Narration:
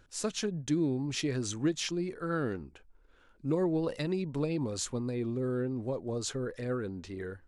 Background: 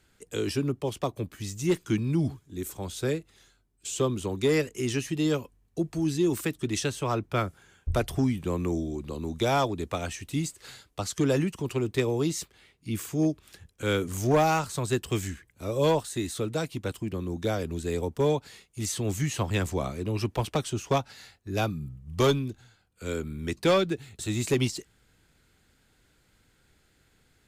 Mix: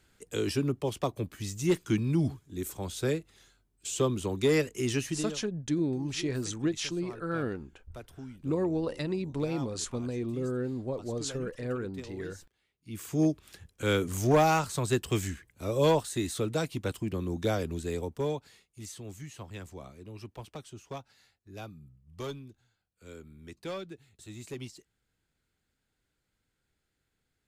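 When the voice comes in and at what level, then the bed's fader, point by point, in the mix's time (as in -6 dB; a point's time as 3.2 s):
5.00 s, 0.0 dB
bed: 5.1 s -1 dB
5.42 s -19 dB
12.7 s -19 dB
13.15 s -0.5 dB
17.57 s -0.5 dB
19.22 s -15.5 dB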